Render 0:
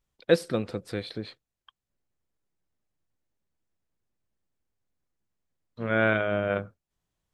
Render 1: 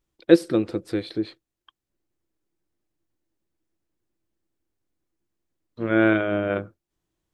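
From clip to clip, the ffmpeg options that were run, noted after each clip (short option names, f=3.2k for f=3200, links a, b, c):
-af "equalizer=f=330:w=4.2:g=14,volume=1dB"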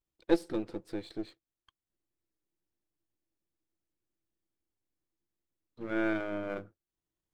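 -af "aeval=exprs='if(lt(val(0),0),0.447*val(0),val(0))':c=same,volume=-9dB"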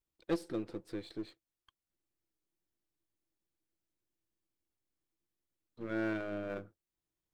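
-af "aeval=exprs='(tanh(17.8*val(0)+0.45)-tanh(0.45))/17.8':c=same"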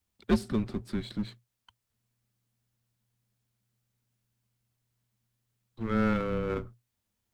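-af "afreqshift=-120,volume=8.5dB"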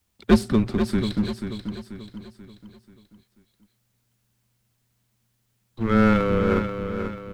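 -af "aecho=1:1:486|972|1458|1944|2430:0.398|0.175|0.0771|0.0339|0.0149,volume=9dB"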